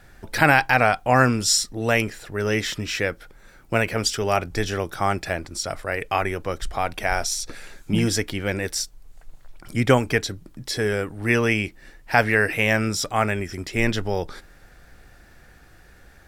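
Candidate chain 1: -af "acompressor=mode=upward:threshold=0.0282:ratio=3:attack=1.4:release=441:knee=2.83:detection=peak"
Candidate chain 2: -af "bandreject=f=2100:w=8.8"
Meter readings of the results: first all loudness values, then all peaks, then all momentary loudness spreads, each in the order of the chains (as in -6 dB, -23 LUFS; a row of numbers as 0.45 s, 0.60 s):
-22.5 LUFS, -23.0 LUFS; -2.5 dBFS, -3.0 dBFS; 11 LU, 11 LU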